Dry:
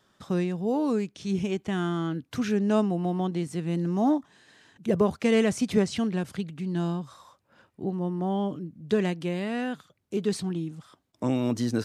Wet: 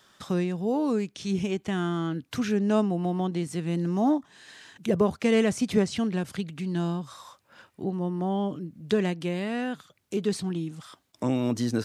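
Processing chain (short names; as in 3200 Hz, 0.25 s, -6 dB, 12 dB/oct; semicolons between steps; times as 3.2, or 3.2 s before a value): mismatched tape noise reduction encoder only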